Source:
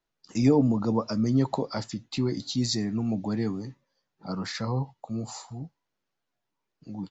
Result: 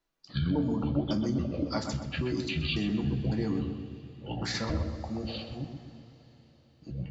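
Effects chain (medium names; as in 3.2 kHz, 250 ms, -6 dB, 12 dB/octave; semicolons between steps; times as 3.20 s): pitch shift switched off and on -8 st, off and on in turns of 276 ms; compression, threshold -27 dBFS, peak gain reduction 11.5 dB; filtered feedback delay 127 ms, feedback 53%, low-pass 2 kHz, level -5.5 dB; two-slope reverb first 0.21 s, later 4.8 s, from -22 dB, DRR 4.5 dB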